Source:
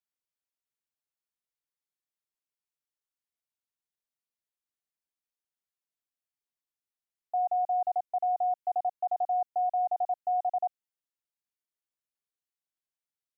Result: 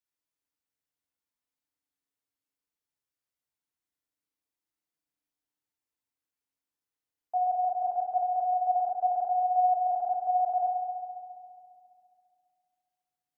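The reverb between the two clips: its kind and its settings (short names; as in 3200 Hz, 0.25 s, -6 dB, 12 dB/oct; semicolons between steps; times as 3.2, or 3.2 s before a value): FDN reverb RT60 2.3 s, low-frequency decay 1.6×, high-frequency decay 0.3×, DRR -1 dB; gain -1.5 dB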